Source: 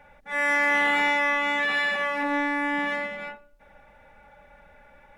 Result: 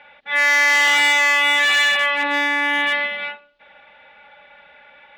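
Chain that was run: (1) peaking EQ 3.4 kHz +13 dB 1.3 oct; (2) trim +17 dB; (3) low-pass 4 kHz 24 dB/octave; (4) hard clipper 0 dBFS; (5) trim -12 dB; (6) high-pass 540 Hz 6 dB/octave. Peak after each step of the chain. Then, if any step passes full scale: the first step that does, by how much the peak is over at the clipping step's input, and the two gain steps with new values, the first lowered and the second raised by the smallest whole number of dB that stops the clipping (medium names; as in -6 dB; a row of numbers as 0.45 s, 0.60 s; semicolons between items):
-8.5 dBFS, +8.5 dBFS, +8.0 dBFS, 0.0 dBFS, -12.0 dBFS, -9.0 dBFS; step 2, 8.0 dB; step 2 +9 dB, step 5 -4 dB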